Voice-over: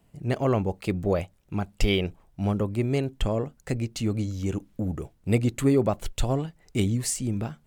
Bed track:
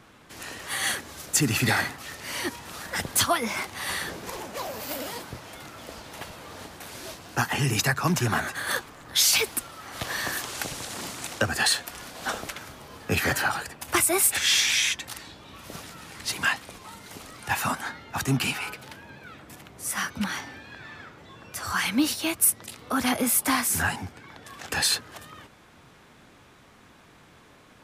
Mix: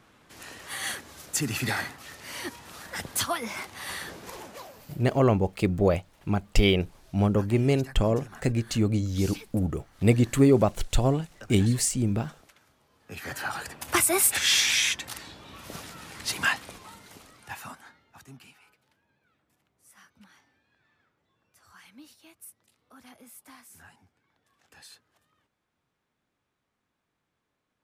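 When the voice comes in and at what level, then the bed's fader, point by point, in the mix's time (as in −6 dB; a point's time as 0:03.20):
4.75 s, +2.5 dB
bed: 0:04.47 −5.5 dB
0:04.99 −21.5 dB
0:12.95 −21.5 dB
0:13.69 −0.5 dB
0:16.68 −0.5 dB
0:18.52 −27 dB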